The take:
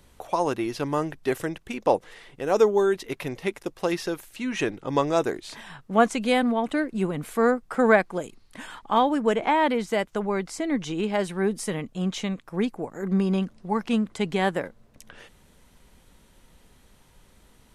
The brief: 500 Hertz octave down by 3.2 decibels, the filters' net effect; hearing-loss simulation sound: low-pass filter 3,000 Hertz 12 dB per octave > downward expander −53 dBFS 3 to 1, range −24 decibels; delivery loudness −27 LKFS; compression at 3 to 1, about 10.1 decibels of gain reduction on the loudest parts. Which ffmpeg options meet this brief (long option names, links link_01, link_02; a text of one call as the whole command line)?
ffmpeg -i in.wav -af "equalizer=frequency=500:width_type=o:gain=-4,acompressor=threshold=-29dB:ratio=3,lowpass=3000,agate=range=-24dB:threshold=-53dB:ratio=3,volume=6.5dB" out.wav